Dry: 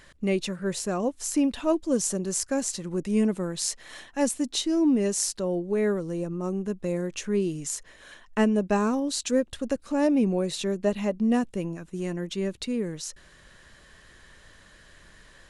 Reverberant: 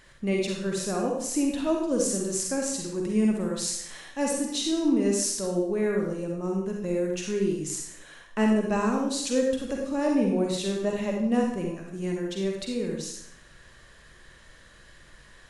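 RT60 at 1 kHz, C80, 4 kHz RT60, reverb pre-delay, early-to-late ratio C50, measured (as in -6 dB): 0.65 s, 5.0 dB, 0.60 s, 39 ms, 1.0 dB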